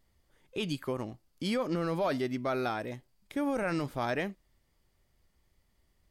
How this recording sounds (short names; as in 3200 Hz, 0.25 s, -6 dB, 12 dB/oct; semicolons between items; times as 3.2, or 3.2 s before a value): noise floor -73 dBFS; spectral tilt -4.5 dB/oct